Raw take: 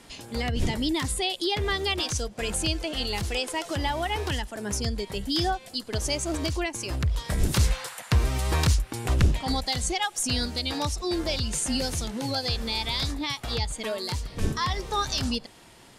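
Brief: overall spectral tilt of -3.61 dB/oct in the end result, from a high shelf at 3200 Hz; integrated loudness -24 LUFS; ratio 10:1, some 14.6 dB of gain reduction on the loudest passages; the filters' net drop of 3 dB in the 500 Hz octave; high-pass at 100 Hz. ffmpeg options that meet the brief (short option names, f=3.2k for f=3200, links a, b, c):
-af "highpass=100,equalizer=f=500:t=o:g=-4,highshelf=f=3.2k:g=-4.5,acompressor=threshold=-35dB:ratio=10,volume=15dB"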